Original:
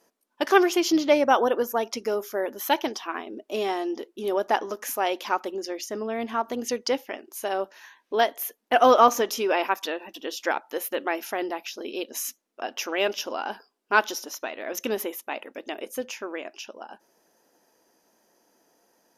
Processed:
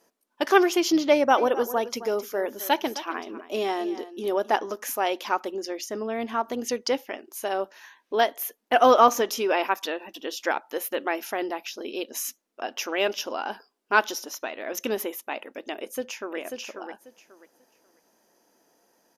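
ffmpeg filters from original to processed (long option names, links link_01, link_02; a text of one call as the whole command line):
ffmpeg -i in.wav -filter_complex "[0:a]asplit=3[link_01][link_02][link_03];[link_01]afade=type=out:start_time=1.36:duration=0.02[link_04];[link_02]aecho=1:1:263:0.188,afade=type=in:start_time=1.36:duration=0.02,afade=type=out:start_time=4.55:duration=0.02[link_05];[link_03]afade=type=in:start_time=4.55:duration=0.02[link_06];[link_04][link_05][link_06]amix=inputs=3:normalize=0,asplit=2[link_07][link_08];[link_08]afade=type=in:start_time=15.77:duration=0.01,afade=type=out:start_time=16.37:duration=0.01,aecho=0:1:540|1080|1620:0.530884|0.106177|0.0212354[link_09];[link_07][link_09]amix=inputs=2:normalize=0" out.wav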